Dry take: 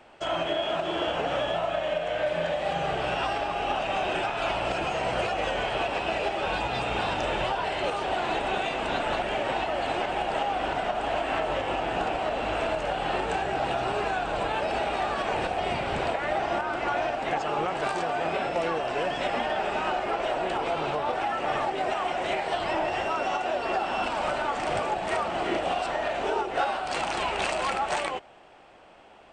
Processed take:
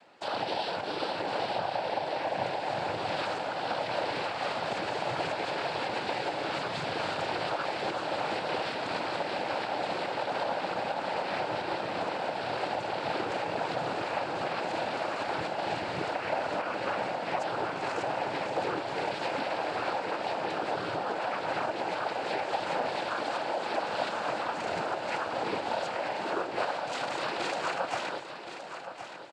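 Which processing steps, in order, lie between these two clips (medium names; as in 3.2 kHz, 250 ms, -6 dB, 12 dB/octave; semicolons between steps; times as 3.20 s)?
noise-vocoded speech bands 8; feedback delay 1071 ms, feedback 35%, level -10 dB; trim -4 dB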